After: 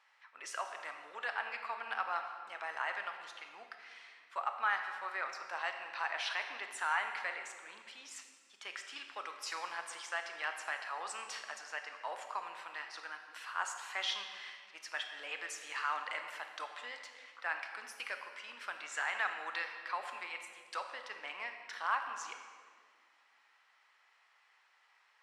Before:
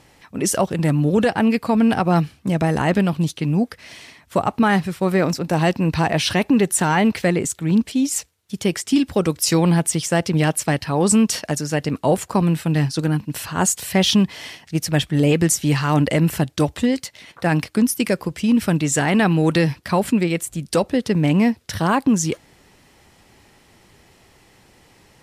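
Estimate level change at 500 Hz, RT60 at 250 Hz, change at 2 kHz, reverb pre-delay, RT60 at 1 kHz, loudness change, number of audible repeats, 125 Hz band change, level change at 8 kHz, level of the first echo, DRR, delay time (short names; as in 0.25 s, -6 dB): -28.0 dB, 2.4 s, -10.5 dB, 22 ms, 1.7 s, -20.5 dB, none, under -40 dB, -25.0 dB, none, 5.0 dB, none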